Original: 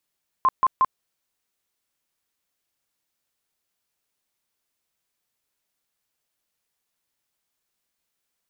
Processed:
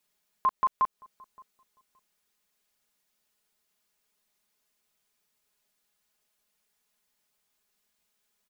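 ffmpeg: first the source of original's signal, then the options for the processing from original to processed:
-f lavfi -i "aevalsrc='0.2*sin(2*PI*1050*mod(t,0.18))*lt(mod(t,0.18),39/1050)':d=0.54:s=44100"
-filter_complex "[0:a]aecho=1:1:4.8:0.93,alimiter=limit=-18.5dB:level=0:latency=1:release=193,asplit=2[a][b];[b]adelay=570,lowpass=f=810:p=1,volume=-22.5dB,asplit=2[c][d];[d]adelay=570,lowpass=f=810:p=1,volume=0.28[e];[a][c][e]amix=inputs=3:normalize=0"

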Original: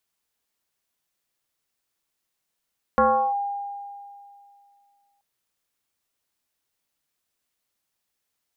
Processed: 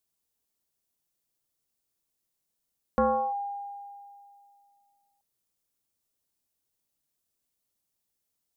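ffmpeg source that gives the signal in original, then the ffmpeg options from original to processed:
-f lavfi -i "aevalsrc='0.211*pow(10,-3*t/2.45)*sin(2*PI*806*t+1.8*clip(1-t/0.36,0,1)*sin(2*PI*0.36*806*t))':d=2.23:s=44100"
-af "equalizer=f=1.8k:w=0.45:g=-10"

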